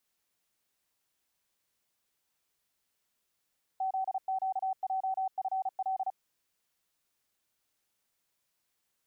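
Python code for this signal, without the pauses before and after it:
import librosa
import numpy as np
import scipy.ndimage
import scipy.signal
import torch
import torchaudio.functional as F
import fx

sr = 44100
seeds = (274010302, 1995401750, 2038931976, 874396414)

y = fx.morse(sr, text='ZQJFL', wpm=35, hz=762.0, level_db=-28.5)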